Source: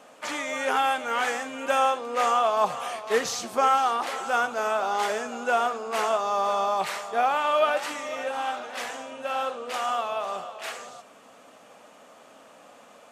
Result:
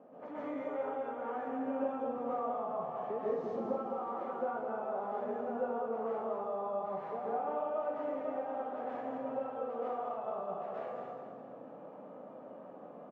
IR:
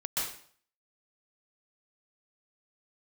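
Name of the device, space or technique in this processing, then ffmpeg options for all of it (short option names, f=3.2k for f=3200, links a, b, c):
television next door: -filter_complex "[0:a]asettb=1/sr,asplit=3[a][b][c];[a]atrim=end=1.814[d];[b]atrim=start=1.81:end=2.22,asetpts=PTS-STARTPTS,afade=t=in:d=0.004:c=qsin,afade=t=out:st=0.406:d=0.004:c=qsin,bass=f=250:g=12,treble=f=4k:g=5[e];[c]atrim=start=2.216[f];[d][e]acrossfade=d=0.004:c1=hsin:c2=qsin[g];[g][f]acrossfade=d=0.004:c1=qsin:c2=hsin,highpass=150,acompressor=threshold=-36dB:ratio=4,lowpass=480[h];[1:a]atrim=start_sample=2205[i];[h][i]afir=irnorm=-1:irlink=0,aecho=1:1:208|416|624|832|1040:0.501|0.221|0.097|0.0427|0.0188,volume=2.5dB"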